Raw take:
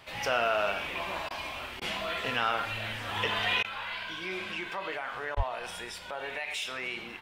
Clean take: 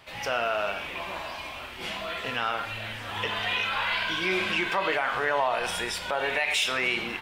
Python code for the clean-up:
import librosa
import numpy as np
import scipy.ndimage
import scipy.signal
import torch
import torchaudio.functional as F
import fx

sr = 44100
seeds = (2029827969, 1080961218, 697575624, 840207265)

y = fx.highpass(x, sr, hz=140.0, slope=24, at=(5.36, 5.48), fade=0.02)
y = fx.fix_interpolate(y, sr, at_s=(1.29, 1.8, 3.63, 5.35), length_ms=14.0)
y = fx.gain(y, sr, db=fx.steps((0.0, 0.0), (3.65, 9.5)))